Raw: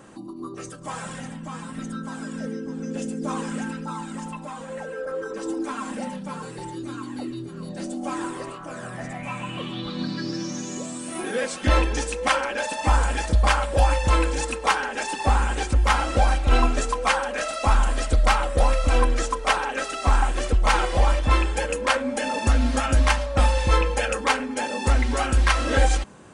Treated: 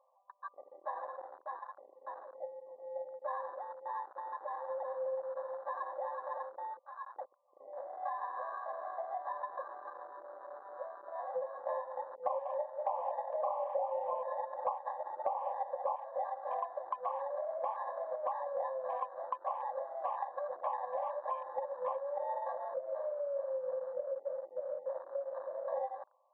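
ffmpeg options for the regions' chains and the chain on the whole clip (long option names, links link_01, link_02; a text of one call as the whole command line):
ffmpeg -i in.wav -filter_complex "[0:a]asettb=1/sr,asplit=3[link_01][link_02][link_03];[link_01]atrim=end=4.054[link_04];[link_02]atrim=start=4.05:end=6.43,asetpts=PTS-STARTPTS,afade=type=in:duration=0.004:curve=qsin,afade=type=out:start_time=2.376:duration=0.004:curve=qsin,highpass=300,lowpass=6900,highshelf=frequency=3900:gain=-7.5,aecho=1:1:372:0.531,atrim=end_sample=104958[link_05];[link_03]atrim=start=6.426[link_06];[link_04][link_05]acrossfade=duration=0.004:curve1=hsin:curve2=qsin[link_07];[link_07][link_06]acrossfade=duration=0.004:curve1=qsin:curve2=hsin,asettb=1/sr,asplit=3[link_08][link_09][link_10];[link_08]atrim=end=7.874[link_11];[link_09]atrim=start=7.87:end=9.29,asetpts=PTS-STARTPTS,afade=type=in:duration=0.004:curve=qsin,afade=type=out:start_time=1.416:duration=0.004:curve=qsin,highpass=120,bandreject=frequency=1600:width=6,aecho=1:1:2.7:0.67,atrim=end_sample=62622[link_12];[link_10]atrim=start=9.286[link_13];[link_11][link_12]acrossfade=duration=0.004:curve1=hsin:curve2=qsin[link_14];[link_14][link_13]acrossfade=duration=0.004:curve1=qsin:curve2=hsin,asettb=1/sr,asplit=3[link_15][link_16][link_17];[link_15]atrim=end=12.154[link_18];[link_16]atrim=start=12.15:end=15.96,asetpts=PTS-STARTPTS,afade=type=in:duration=0.004:curve=qsin,afade=type=out:start_time=3.806:duration=0.004:curve=qsin,agate=range=-19dB:threshold=-26dB:ratio=16:release=100:detection=peak,equalizer=frequency=620:width_type=o:width=1.2:gain=13,asplit=2[link_19][link_20];[link_20]adelay=192,lowpass=frequency=960:poles=1,volume=-8dB,asplit=2[link_21][link_22];[link_22]adelay=192,lowpass=frequency=960:poles=1,volume=0.23,asplit=2[link_23][link_24];[link_24]adelay=192,lowpass=frequency=960:poles=1,volume=0.23[link_25];[link_19][link_21][link_23][link_25]amix=inputs=4:normalize=0,atrim=end_sample=168021[link_26];[link_17]atrim=start=15.956[link_27];[link_18][link_26]acrossfade=duration=0.004:curve1=hsin:curve2=qsin[link_28];[link_28][link_27]acrossfade=duration=0.004:curve1=qsin:curve2=hsin,asettb=1/sr,asplit=3[link_29][link_30][link_31];[link_29]atrim=end=22.744[link_32];[link_30]atrim=start=22.74:end=25.68,asetpts=PTS-STARTPTS,afade=type=in:duration=0.004:curve=qsin,afade=type=out:start_time=2.936:duration=0.004:curve=qsin,asuperstop=centerf=1100:order=20:qfactor=0.89,acrusher=bits=4:mode=log:mix=0:aa=0.000001[link_33];[link_31]atrim=start=25.676[link_34];[link_32][link_33]acrossfade=duration=0.004:curve1=hsin:curve2=qsin[link_35];[link_35][link_34]acrossfade=duration=0.004:curve1=qsin:curve2=hsin,afftfilt=real='re*between(b*sr/4096,500,1200)':imag='im*between(b*sr/4096,500,1200)':win_size=4096:overlap=0.75,afwtdn=0.0112,acompressor=threshold=-32dB:ratio=6,volume=-2dB" out.wav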